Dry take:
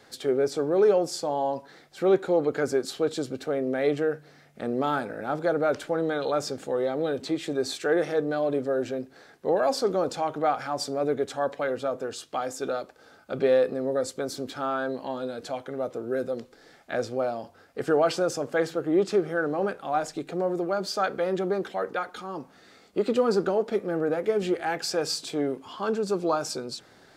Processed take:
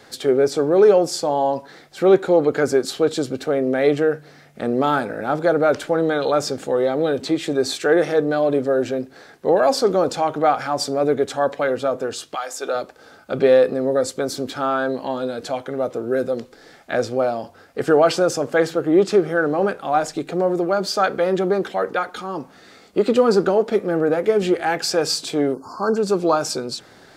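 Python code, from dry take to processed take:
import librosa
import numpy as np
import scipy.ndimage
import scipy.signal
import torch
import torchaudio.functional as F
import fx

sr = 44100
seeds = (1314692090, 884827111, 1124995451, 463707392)

y = fx.highpass(x, sr, hz=fx.line((12.34, 1200.0), (12.74, 370.0)), slope=12, at=(12.34, 12.74), fade=0.02)
y = fx.spec_erase(y, sr, start_s=25.54, length_s=0.43, low_hz=1600.0, high_hz=4200.0)
y = F.gain(torch.from_numpy(y), 7.5).numpy()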